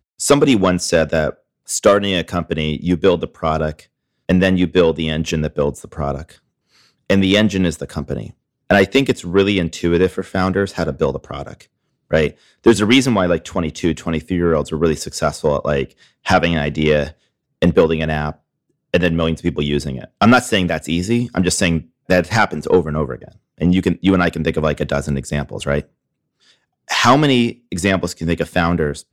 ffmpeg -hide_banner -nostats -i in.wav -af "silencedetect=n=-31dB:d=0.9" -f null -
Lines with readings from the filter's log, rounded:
silence_start: 25.81
silence_end: 26.89 | silence_duration: 1.08